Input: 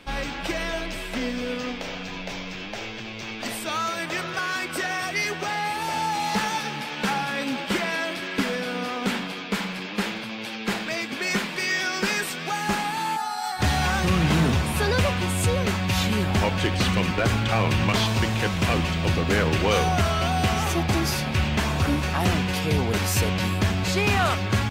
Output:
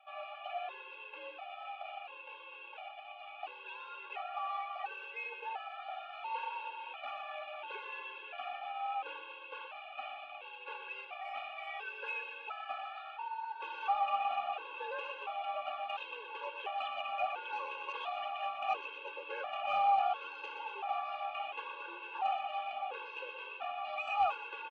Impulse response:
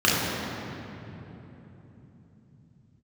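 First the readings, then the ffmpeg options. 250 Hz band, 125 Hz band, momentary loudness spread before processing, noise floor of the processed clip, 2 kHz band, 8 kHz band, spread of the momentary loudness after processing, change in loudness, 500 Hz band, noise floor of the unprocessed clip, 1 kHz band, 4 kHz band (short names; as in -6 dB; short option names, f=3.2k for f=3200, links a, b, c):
under -40 dB, under -40 dB, 8 LU, -50 dBFS, -16.0 dB, under -40 dB, 12 LU, -14.5 dB, -17.0 dB, -34 dBFS, -7.5 dB, -19.0 dB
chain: -filter_complex "[0:a]asplit=3[a][b][c];[a]bandpass=f=730:t=q:w=8,volume=0dB[d];[b]bandpass=f=1.09k:t=q:w=8,volume=-6dB[e];[c]bandpass=f=2.44k:t=q:w=8,volume=-9dB[f];[d][e][f]amix=inputs=3:normalize=0,aemphasis=mode=production:type=50kf,highpass=f=370:t=q:w=0.5412,highpass=f=370:t=q:w=1.307,lowpass=f=3.3k:t=q:w=0.5176,lowpass=f=3.3k:t=q:w=0.7071,lowpass=f=3.3k:t=q:w=1.932,afreqshift=58,asoftclip=type=tanh:threshold=-20.5dB,asplit=2[g][h];[h]aecho=0:1:121|242|363|484|605|726:0.376|0.192|0.0978|0.0499|0.0254|0.013[i];[g][i]amix=inputs=2:normalize=0,afftfilt=real='re*gt(sin(2*PI*0.72*pts/sr)*(1-2*mod(floor(b*sr/1024/280),2)),0)':imag='im*gt(sin(2*PI*0.72*pts/sr)*(1-2*mod(floor(b*sr/1024/280),2)),0)':win_size=1024:overlap=0.75"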